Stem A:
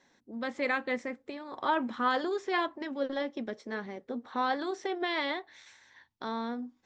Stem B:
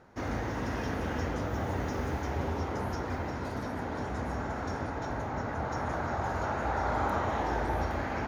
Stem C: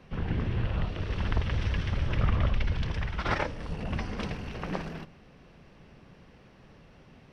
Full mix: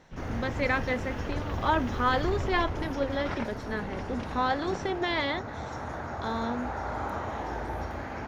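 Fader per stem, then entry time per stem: +2.5, -3.5, -7.5 dB; 0.00, 0.00, 0.00 s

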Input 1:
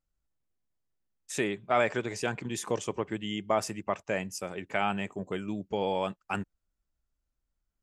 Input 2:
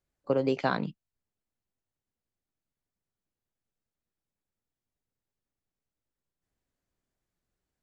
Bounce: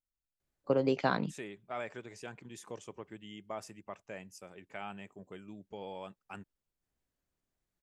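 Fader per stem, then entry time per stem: -14.0, -2.0 dB; 0.00, 0.40 s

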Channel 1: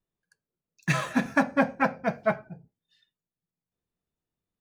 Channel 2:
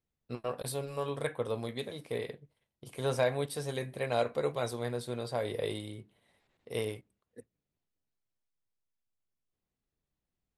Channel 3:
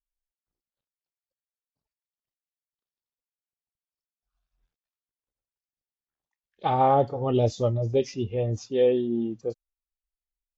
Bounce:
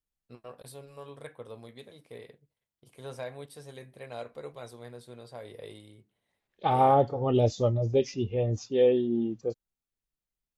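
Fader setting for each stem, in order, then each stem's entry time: off, -10.0 dB, -1.0 dB; off, 0.00 s, 0.00 s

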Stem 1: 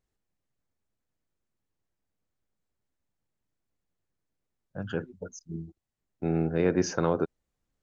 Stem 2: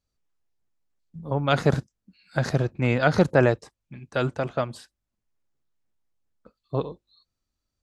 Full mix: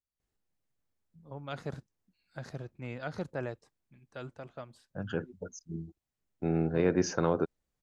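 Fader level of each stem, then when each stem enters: -2.0, -18.0 dB; 0.20, 0.00 s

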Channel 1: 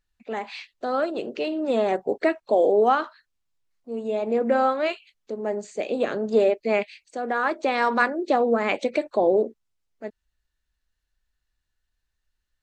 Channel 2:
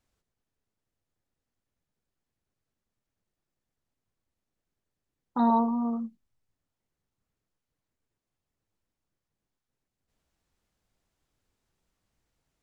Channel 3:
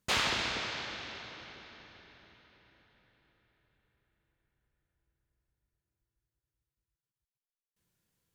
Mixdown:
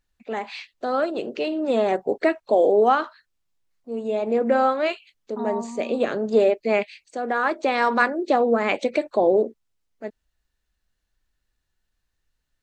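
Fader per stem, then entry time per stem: +1.5 dB, -7.5 dB, off; 0.00 s, 0.00 s, off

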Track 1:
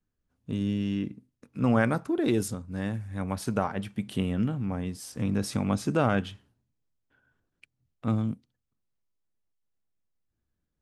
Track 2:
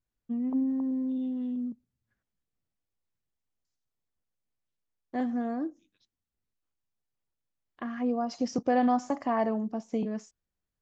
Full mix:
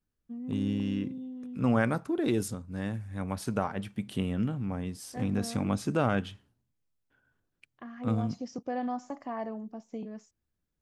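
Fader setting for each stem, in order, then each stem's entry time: -2.5, -8.5 dB; 0.00, 0.00 s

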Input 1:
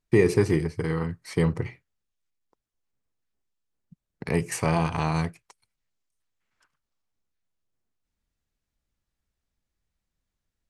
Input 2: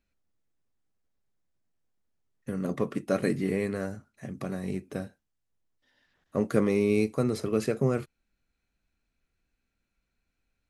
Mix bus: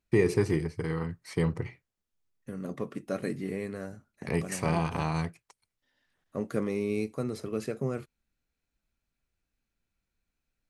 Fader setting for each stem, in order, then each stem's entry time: -4.5, -6.0 dB; 0.00, 0.00 s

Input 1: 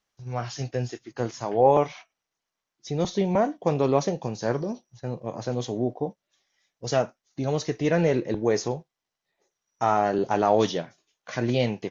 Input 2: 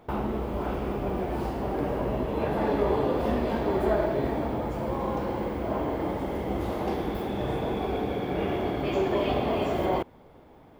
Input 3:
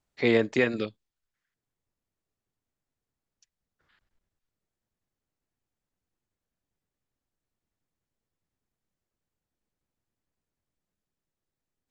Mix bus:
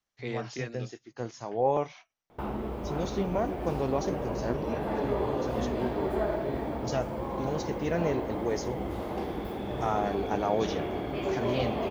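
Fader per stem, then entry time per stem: -7.5, -4.5, -13.5 dB; 0.00, 2.30, 0.00 s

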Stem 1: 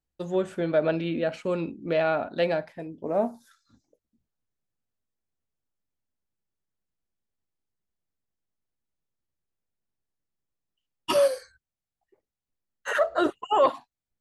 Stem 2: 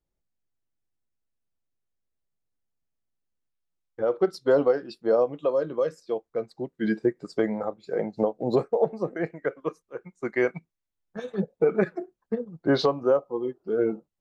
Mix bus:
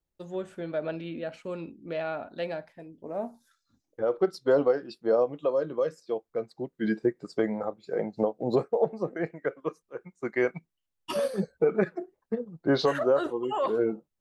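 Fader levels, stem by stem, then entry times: -8.0, -2.0 dB; 0.00, 0.00 s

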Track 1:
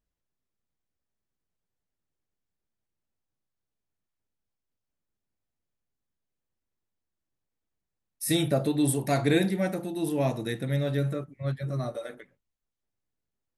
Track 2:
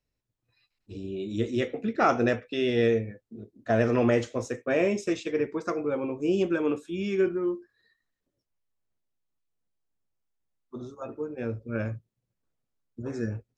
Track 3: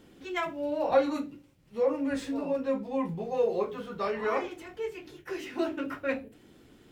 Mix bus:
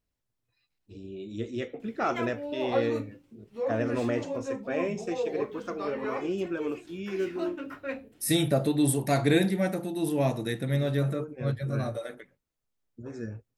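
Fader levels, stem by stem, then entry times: +0.5, -6.0, -4.5 dB; 0.00, 0.00, 1.80 s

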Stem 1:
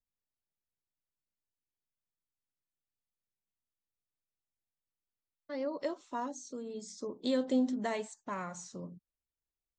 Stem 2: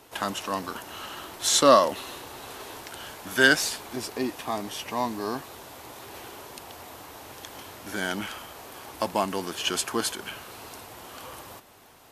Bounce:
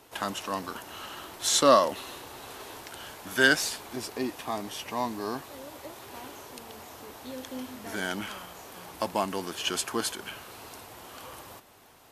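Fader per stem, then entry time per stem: -10.0, -2.5 dB; 0.00, 0.00 s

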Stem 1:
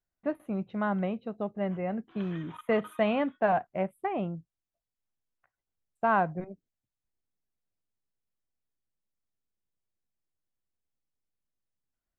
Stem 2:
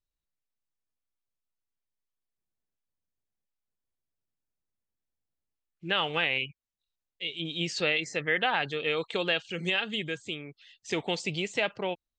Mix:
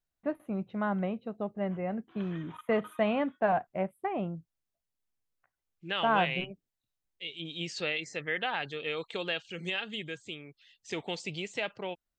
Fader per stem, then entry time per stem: -1.5, -5.5 dB; 0.00, 0.00 s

